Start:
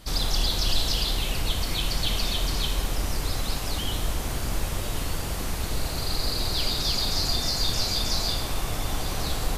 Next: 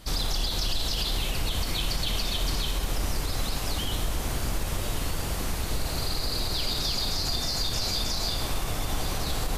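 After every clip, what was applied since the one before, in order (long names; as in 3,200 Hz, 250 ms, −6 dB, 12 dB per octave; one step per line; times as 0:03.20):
brickwall limiter −18 dBFS, peak gain reduction 7 dB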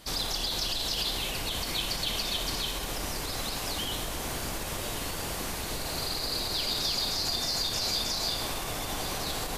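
low-shelf EQ 140 Hz −12 dB
notch filter 1,300 Hz, Q 25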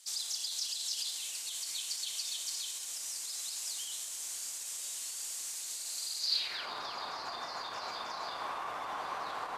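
surface crackle 190 per second −41 dBFS
band-pass filter sweep 7,500 Hz → 1,100 Hz, 0:06.18–0:06.69
level +4 dB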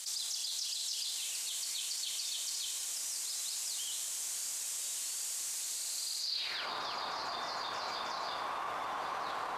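envelope flattener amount 70%
level −6.5 dB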